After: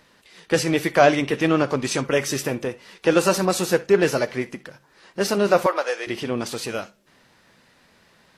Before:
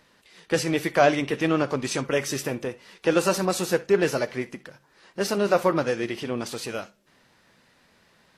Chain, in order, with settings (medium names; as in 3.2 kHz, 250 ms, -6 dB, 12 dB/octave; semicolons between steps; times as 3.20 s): 5.66–6.07 s: high-pass 510 Hz 24 dB/octave; trim +3.5 dB